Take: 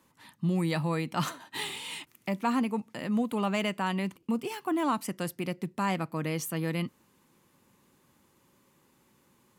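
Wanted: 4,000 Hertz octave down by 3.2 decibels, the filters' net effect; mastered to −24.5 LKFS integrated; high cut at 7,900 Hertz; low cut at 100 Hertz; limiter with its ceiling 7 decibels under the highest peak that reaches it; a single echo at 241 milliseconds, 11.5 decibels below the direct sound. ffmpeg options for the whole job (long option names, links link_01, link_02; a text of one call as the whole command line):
ffmpeg -i in.wav -af "highpass=100,lowpass=7900,equalizer=frequency=4000:width_type=o:gain=-4.5,alimiter=limit=-23dB:level=0:latency=1,aecho=1:1:241:0.266,volume=9.5dB" out.wav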